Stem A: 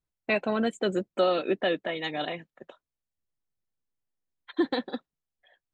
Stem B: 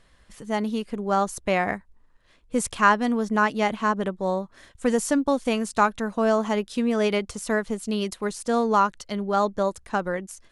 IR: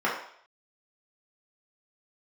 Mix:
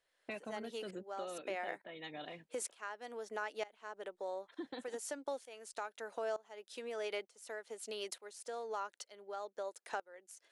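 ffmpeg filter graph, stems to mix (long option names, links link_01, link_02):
-filter_complex "[0:a]volume=-11.5dB[link_01];[1:a]highpass=frequency=410:width=0.5412,highpass=frequency=410:width=1.3066,equalizer=frequency=1100:width_type=o:width=0.28:gain=-8.5,aeval=exprs='val(0)*pow(10,-21*if(lt(mod(-1.1*n/s,1),2*abs(-1.1)/1000),1-mod(-1.1*n/s,1)/(2*abs(-1.1)/1000),(mod(-1.1*n/s,1)-2*abs(-1.1)/1000)/(1-2*abs(-1.1)/1000))/20)':channel_layout=same,volume=2dB[link_02];[link_01][link_02]amix=inputs=2:normalize=0,acompressor=threshold=-44dB:ratio=2.5"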